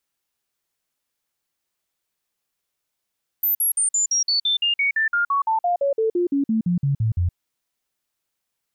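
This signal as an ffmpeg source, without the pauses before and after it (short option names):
-f lavfi -i "aevalsrc='0.141*clip(min(mod(t,0.17),0.12-mod(t,0.17))/0.005,0,1)*sin(2*PI*14200*pow(2,-floor(t/0.17)/3)*mod(t,0.17))':d=3.91:s=44100"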